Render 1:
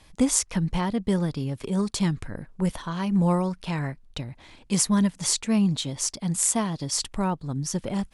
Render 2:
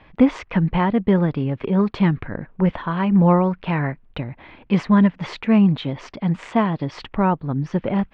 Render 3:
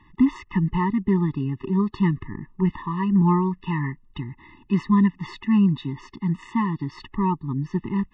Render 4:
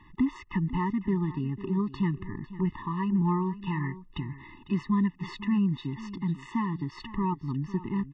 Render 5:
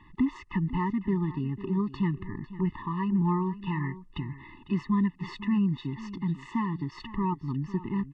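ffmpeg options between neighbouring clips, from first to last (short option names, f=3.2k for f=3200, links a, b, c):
-af "lowpass=f=2.6k:w=0.5412,lowpass=f=2.6k:w=1.3066,lowshelf=f=96:g=-8.5,volume=8.5dB"
-af "afftfilt=real='re*eq(mod(floor(b*sr/1024/430),2),0)':imag='im*eq(mod(floor(b*sr/1024/430),2),0)':win_size=1024:overlap=0.75,volume=-3dB"
-af "acompressor=threshold=-36dB:ratio=1.5,aecho=1:1:500:0.168"
-ar 22050 -c:a nellymoser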